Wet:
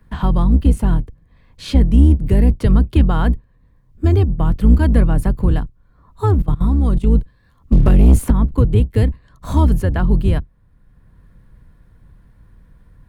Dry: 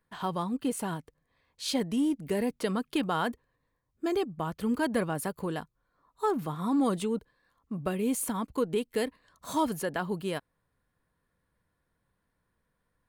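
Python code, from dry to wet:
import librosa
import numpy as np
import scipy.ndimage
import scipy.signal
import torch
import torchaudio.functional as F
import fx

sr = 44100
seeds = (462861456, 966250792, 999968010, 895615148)

y = fx.octave_divider(x, sr, octaves=2, level_db=4.0)
y = fx.bass_treble(y, sr, bass_db=13, treble_db=-5)
y = fx.level_steps(y, sr, step_db=19, at=(6.34, 7.07))
y = fx.leveller(y, sr, passes=2, at=(7.72, 8.31))
y = fx.band_squash(y, sr, depth_pct=40)
y = F.gain(torch.from_numpy(y), 4.5).numpy()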